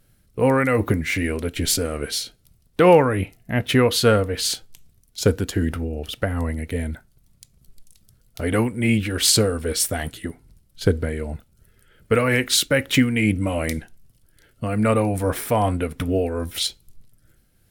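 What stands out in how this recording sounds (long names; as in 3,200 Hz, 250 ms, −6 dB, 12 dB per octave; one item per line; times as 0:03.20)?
tremolo triangle 2.5 Hz, depth 40%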